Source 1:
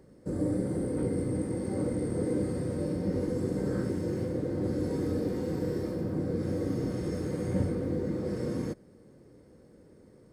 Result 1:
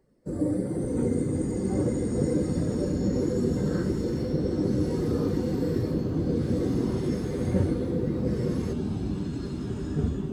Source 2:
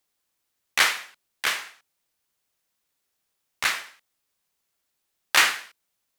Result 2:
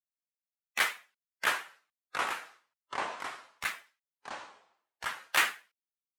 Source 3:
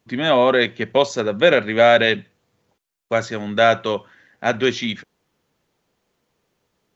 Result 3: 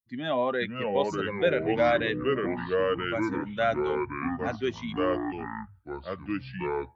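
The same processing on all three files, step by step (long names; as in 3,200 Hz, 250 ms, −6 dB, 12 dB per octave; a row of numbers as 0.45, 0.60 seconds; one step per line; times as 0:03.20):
spectral dynamics exaggerated over time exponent 1.5
delay with pitch and tempo change per echo 459 ms, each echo −4 semitones, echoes 3
dynamic equaliser 5,100 Hz, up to −7 dB, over −43 dBFS, Q 1.1
normalise the peak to −12 dBFS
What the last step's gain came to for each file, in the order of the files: +5.0, −5.0, −9.0 decibels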